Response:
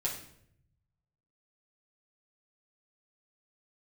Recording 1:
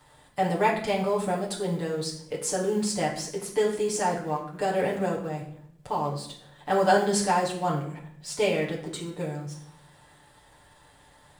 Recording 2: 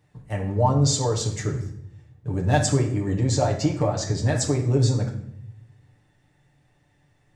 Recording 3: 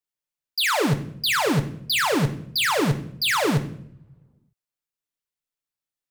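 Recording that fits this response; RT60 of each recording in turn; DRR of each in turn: 1; 0.70, 0.70, 0.70 seconds; −5.5, −1.0, 6.0 decibels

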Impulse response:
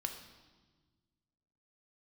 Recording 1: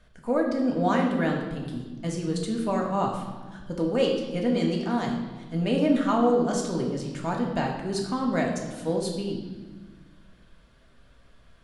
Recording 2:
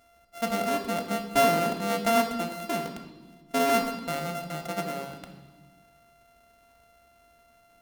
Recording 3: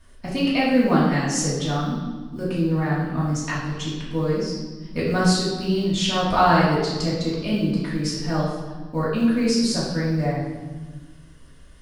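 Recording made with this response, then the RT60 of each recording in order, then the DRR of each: 2; 1.4, 1.4, 1.4 seconds; −0.5, 4.0, −8.5 decibels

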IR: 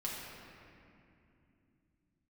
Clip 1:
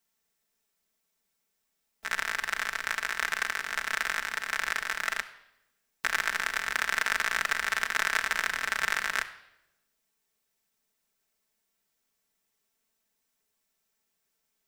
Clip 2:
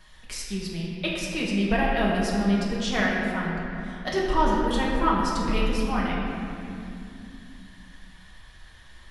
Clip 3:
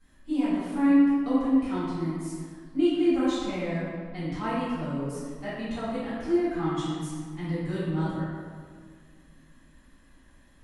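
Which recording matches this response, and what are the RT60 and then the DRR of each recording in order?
2; non-exponential decay, 2.7 s, 1.8 s; 1.0, −5.5, −16.5 decibels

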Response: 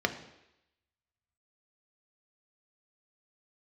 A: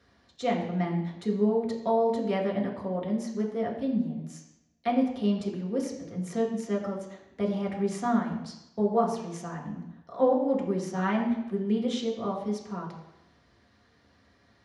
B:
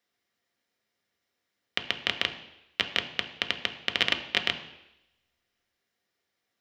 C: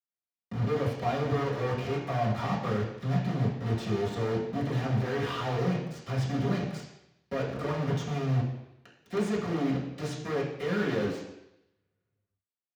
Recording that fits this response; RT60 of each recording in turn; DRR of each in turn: B; 0.85, 0.85, 0.85 seconds; −2.5, 6.0, −8.0 decibels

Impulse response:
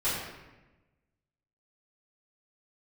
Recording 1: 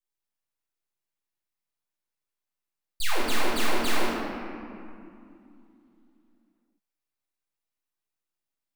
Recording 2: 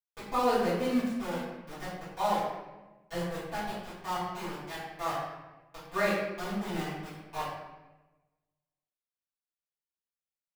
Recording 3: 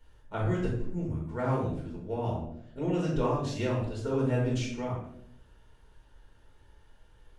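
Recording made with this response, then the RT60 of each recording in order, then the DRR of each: 2; 2.6, 1.1, 0.70 seconds; −9.0, −14.0, −4.5 decibels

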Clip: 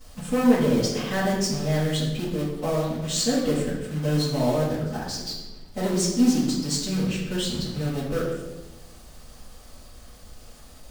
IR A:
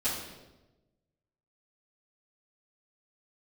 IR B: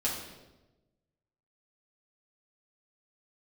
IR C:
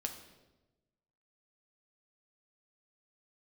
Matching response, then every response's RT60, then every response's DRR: A; 1.1, 1.1, 1.1 seconds; −14.0, −6.5, 3.0 decibels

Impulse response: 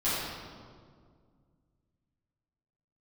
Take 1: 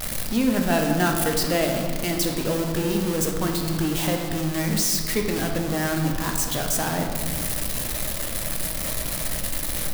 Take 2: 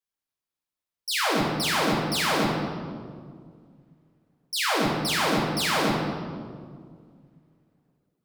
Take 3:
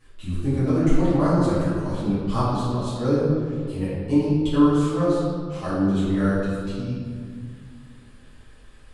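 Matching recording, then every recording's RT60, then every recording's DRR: 3; 2.0, 2.0, 2.0 seconds; 2.0, −3.5, −13.5 decibels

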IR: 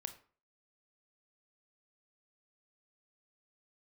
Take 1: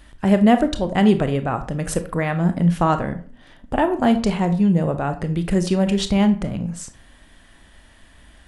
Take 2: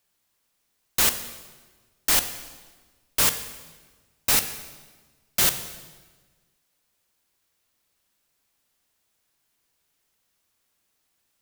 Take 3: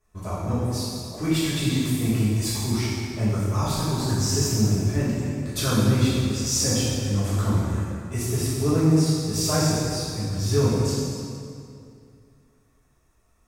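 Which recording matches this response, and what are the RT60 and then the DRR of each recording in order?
1; 0.45, 1.4, 2.5 seconds; 8.5, 9.0, −11.5 decibels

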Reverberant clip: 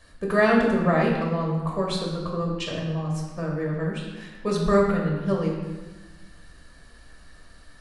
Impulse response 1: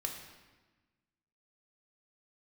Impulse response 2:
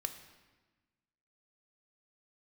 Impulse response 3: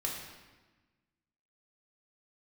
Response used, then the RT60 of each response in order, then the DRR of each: 3; 1.2, 1.2, 1.2 seconds; 1.5, 7.0, −2.5 decibels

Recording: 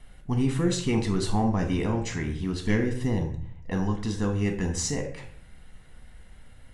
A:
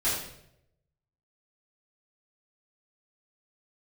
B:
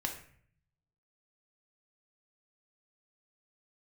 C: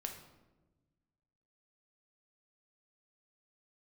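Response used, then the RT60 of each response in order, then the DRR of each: B; 0.75, 0.55, 1.2 seconds; −11.5, 3.0, 3.5 decibels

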